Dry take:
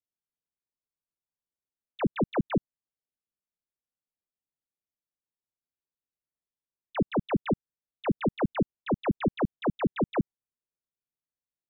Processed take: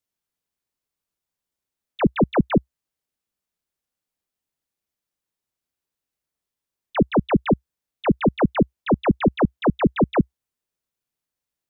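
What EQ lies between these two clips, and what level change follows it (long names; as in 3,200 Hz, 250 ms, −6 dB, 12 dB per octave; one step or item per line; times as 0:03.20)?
parametric band 64 Hz +3.5 dB 0.49 octaves
+8.5 dB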